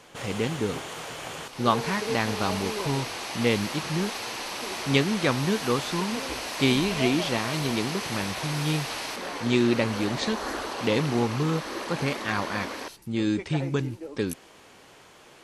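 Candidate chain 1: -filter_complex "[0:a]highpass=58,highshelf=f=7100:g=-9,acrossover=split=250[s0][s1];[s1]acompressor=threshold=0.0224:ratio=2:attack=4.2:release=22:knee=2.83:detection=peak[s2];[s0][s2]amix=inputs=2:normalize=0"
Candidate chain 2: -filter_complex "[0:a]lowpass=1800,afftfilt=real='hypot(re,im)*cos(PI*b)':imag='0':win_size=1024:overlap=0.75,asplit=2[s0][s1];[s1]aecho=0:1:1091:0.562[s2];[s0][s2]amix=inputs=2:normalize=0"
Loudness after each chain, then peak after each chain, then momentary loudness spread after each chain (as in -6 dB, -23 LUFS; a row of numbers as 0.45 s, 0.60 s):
-29.5 LUFS, -30.5 LUFS; -13.0 dBFS, -11.0 dBFS; 7 LU, 9 LU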